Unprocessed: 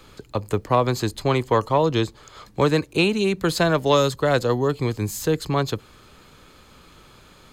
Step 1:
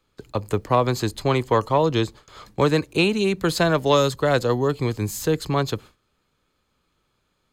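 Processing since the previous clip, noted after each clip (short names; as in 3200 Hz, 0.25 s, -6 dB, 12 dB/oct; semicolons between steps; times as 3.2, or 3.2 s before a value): gate with hold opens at -36 dBFS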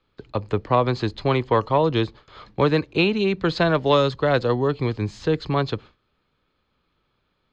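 LPF 4400 Hz 24 dB/oct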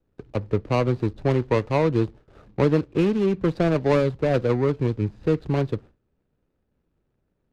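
median filter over 41 samples; air absorption 55 m; gain +1 dB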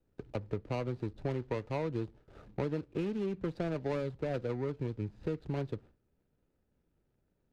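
compressor 2.5:1, threshold -32 dBFS, peak gain reduction 12 dB; notch 1100 Hz, Q 14; gain -4 dB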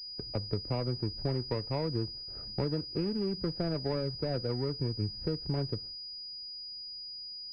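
low shelf 150 Hz +7.5 dB; pulse-width modulation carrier 4900 Hz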